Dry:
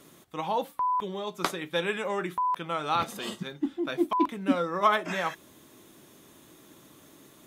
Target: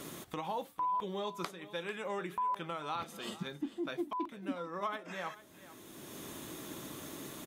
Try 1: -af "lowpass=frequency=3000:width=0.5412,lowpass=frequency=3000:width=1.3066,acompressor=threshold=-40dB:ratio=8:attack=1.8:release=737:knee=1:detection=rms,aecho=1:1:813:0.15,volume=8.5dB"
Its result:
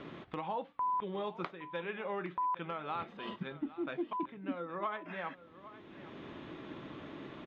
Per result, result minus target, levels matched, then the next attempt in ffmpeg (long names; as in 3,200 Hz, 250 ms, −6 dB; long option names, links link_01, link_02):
echo 368 ms late; 4,000 Hz band −5.5 dB
-af "lowpass=frequency=3000:width=0.5412,lowpass=frequency=3000:width=1.3066,acompressor=threshold=-40dB:ratio=8:attack=1.8:release=737:knee=1:detection=rms,aecho=1:1:445:0.15,volume=8.5dB"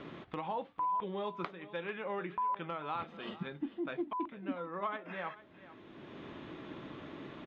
4,000 Hz band −5.5 dB
-af "acompressor=threshold=-40dB:ratio=8:attack=1.8:release=737:knee=1:detection=rms,aecho=1:1:445:0.15,volume=8.5dB"